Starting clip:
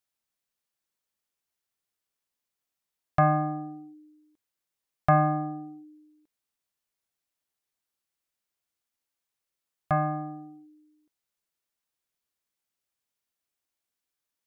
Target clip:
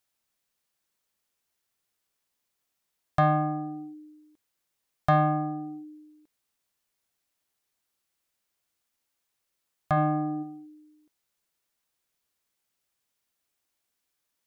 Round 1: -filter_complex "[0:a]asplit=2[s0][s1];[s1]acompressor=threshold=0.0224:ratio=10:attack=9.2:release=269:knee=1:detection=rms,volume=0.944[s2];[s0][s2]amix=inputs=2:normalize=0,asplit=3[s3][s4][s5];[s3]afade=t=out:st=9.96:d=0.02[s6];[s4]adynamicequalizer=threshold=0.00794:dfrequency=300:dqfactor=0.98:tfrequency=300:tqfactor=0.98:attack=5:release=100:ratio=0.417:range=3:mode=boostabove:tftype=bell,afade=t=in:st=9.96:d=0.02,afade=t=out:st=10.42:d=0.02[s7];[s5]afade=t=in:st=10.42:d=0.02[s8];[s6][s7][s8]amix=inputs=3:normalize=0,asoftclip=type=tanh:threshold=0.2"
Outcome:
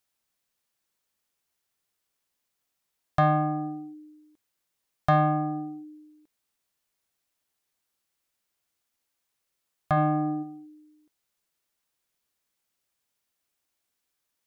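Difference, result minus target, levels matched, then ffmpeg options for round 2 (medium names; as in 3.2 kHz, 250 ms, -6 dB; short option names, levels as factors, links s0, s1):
compression: peak gain reduction -6.5 dB
-filter_complex "[0:a]asplit=2[s0][s1];[s1]acompressor=threshold=0.01:ratio=10:attack=9.2:release=269:knee=1:detection=rms,volume=0.944[s2];[s0][s2]amix=inputs=2:normalize=0,asplit=3[s3][s4][s5];[s3]afade=t=out:st=9.96:d=0.02[s6];[s4]adynamicequalizer=threshold=0.00794:dfrequency=300:dqfactor=0.98:tfrequency=300:tqfactor=0.98:attack=5:release=100:ratio=0.417:range=3:mode=boostabove:tftype=bell,afade=t=in:st=9.96:d=0.02,afade=t=out:st=10.42:d=0.02[s7];[s5]afade=t=in:st=10.42:d=0.02[s8];[s6][s7][s8]amix=inputs=3:normalize=0,asoftclip=type=tanh:threshold=0.2"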